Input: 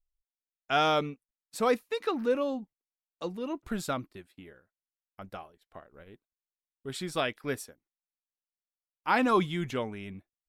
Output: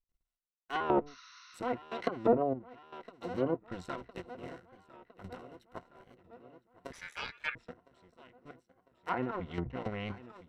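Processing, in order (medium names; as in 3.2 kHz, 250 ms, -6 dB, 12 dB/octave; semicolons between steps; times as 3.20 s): cycle switcher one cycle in 2, muted; trance gate ".xxx......x." 166 bpm -12 dB; filtered feedback delay 1009 ms, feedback 63%, low-pass 4.2 kHz, level -19 dB; low-pass that closes with the level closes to 690 Hz, closed at -32 dBFS; rippled EQ curve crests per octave 2, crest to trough 8 dB; 1.10–1.55 s: spectral replace 970–6500 Hz after; treble shelf 4.7 kHz -8 dB; 6.92–7.56 s: ring modulator 1.9 kHz; 9.23–9.66 s: compression 4:1, threshold -38 dBFS, peak gain reduction 8.5 dB; warped record 45 rpm, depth 100 cents; trim +5.5 dB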